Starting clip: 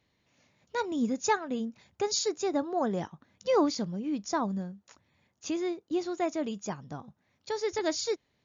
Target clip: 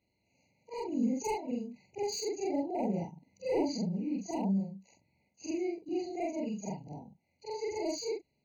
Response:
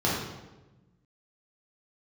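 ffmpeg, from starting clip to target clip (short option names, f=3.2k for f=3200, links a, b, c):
-filter_complex "[0:a]afftfilt=real='re':imag='-im':win_size=4096:overlap=0.75,adynamicequalizer=threshold=0.00501:dfrequency=190:dqfactor=1.7:tfrequency=190:tqfactor=1.7:attack=5:release=100:ratio=0.375:range=2.5:mode=boostabove:tftype=bell,acrossover=split=430[a][b];[b]volume=31.5dB,asoftclip=hard,volume=-31.5dB[c];[a][c]amix=inputs=2:normalize=0,afftfilt=real='re*eq(mod(floor(b*sr/1024/980),2),0)':imag='im*eq(mod(floor(b*sr/1024/980),2),0)':win_size=1024:overlap=0.75"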